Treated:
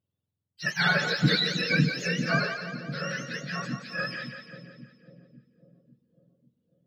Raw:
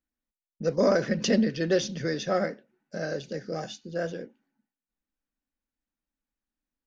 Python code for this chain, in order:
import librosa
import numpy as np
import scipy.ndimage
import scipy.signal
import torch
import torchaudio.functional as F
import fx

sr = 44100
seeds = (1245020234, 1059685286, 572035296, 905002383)

y = fx.octave_mirror(x, sr, pivot_hz=930.0)
y = fx.echo_split(y, sr, split_hz=480.0, low_ms=547, high_ms=173, feedback_pct=52, wet_db=-8)
y = y * 10.0 ** (2.5 / 20.0)